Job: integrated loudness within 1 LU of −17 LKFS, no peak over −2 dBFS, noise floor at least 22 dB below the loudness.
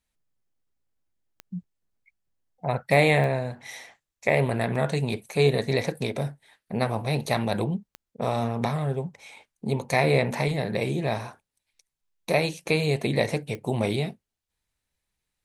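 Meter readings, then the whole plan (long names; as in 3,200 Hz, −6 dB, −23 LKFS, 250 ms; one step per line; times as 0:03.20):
number of clicks 5; integrated loudness −26.0 LKFS; sample peak −7.0 dBFS; target loudness −17.0 LKFS
→ click removal
level +9 dB
brickwall limiter −2 dBFS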